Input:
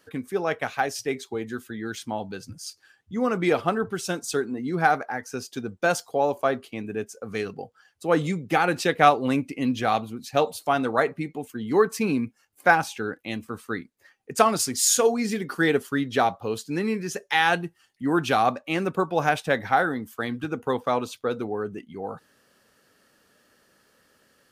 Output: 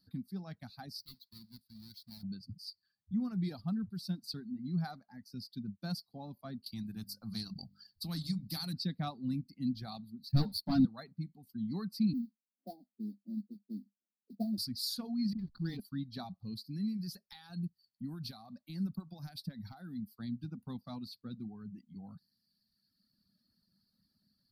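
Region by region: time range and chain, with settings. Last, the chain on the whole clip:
1.00–2.23 s: square wave that keeps the level + amplifier tone stack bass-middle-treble 5-5-5
6.66–8.73 s: tone controls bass +2 dB, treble +5 dB + hum notches 50/100/150/200/250 Hz + spectrum-flattening compressor 2:1
10.29–10.85 s: bass shelf 280 Hz +11 dB + waveshaping leveller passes 3 + three-phase chorus
12.13–14.58 s: Chebyshev band-pass 200–710 Hz, order 5 + modulation noise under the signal 28 dB
15.33–15.80 s: low-pass 6 kHz + phase dispersion highs, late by 57 ms, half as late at 360 Hz + hysteresis with a dead band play -28.5 dBFS
16.64–20.03 s: treble shelf 5.4 kHz +9 dB + compression, threshold -25 dBFS + overload inside the chain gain 17 dB
whole clip: reverb removal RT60 1.6 s; FFT filter 140 Hz 0 dB, 200 Hz +6 dB, 460 Hz -30 dB, 660 Hz -20 dB, 3 kHz -25 dB, 4.5 kHz +5 dB, 6.7 kHz -28 dB, 12 kHz -8 dB; trim -4.5 dB

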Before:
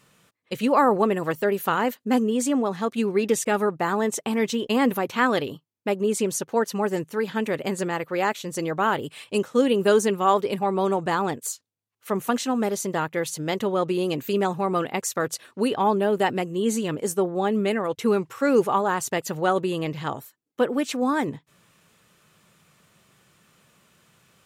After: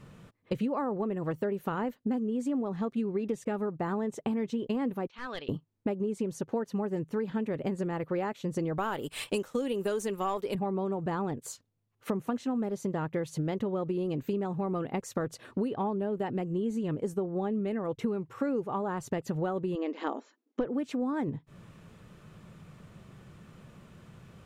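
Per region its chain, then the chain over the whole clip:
5.07–5.49 s: low-pass 4.7 kHz 24 dB/octave + differentiator + hard clipper -31 dBFS
8.78–10.55 s: RIAA curve recording + waveshaping leveller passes 1
19.75–20.66 s: brick-wall FIR band-pass 220–7400 Hz + hard clipper -14.5 dBFS
whole clip: tilt EQ -3.5 dB/octave; compression 10:1, threshold -32 dBFS; trim +3.5 dB

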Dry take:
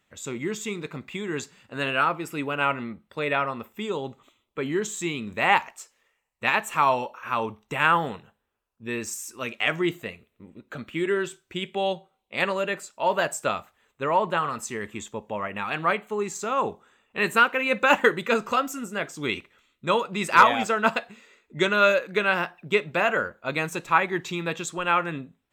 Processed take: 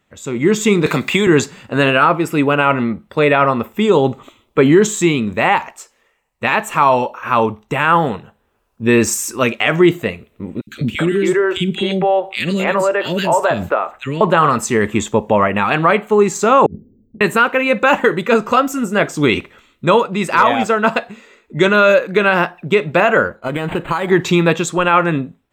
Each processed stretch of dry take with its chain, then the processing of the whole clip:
0.86–1.27 s: tilt EQ +2 dB/octave + three bands compressed up and down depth 70%
10.61–14.21 s: three bands offset in time highs, lows, mids 60/270 ms, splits 340/2300 Hz + compression 2.5:1, threshold -35 dBFS
16.66–17.21 s: inverse Chebyshev band-stop 1.4–8.4 kHz, stop band 80 dB + compressor with a negative ratio -52 dBFS + tape noise reduction on one side only decoder only
23.36–24.11 s: compression 16:1, threshold -28 dBFS + decimation joined by straight lines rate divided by 8×
whole clip: tilt shelf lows +3.5 dB, about 1.4 kHz; level rider gain up to 13.5 dB; loudness maximiser +6 dB; trim -1 dB

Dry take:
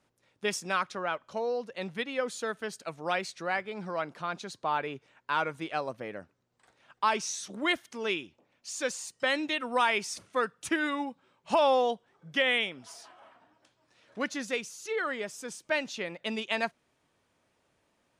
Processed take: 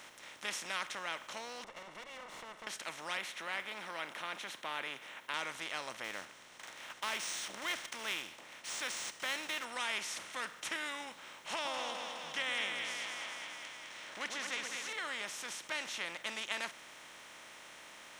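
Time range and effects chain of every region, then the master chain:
1.64–2.67 s: comb filter that takes the minimum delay 1.8 ms + Savitzky-Golay filter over 65 samples + compression 2.5:1, threshold -46 dBFS
3.17–5.34 s: high-pass 190 Hz + high-order bell 6.1 kHz -14 dB 1.2 oct
6.04–9.65 s: block-companded coder 7-bit + treble shelf 7.7 kHz +10.5 dB + decimation joined by straight lines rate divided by 3×
11.53–14.93 s: peaking EQ 12 kHz -15 dB 0.62 oct + two-band feedback delay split 1.2 kHz, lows 120 ms, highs 208 ms, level -9 dB
whole clip: spectral levelling over time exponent 0.4; amplifier tone stack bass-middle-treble 5-5-5; trim -3.5 dB

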